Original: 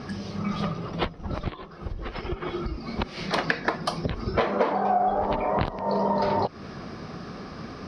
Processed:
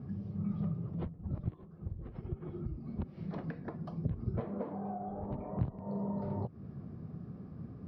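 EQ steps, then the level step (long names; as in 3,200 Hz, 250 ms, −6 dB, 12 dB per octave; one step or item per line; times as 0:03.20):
resonant band-pass 120 Hz, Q 1.5
−1.0 dB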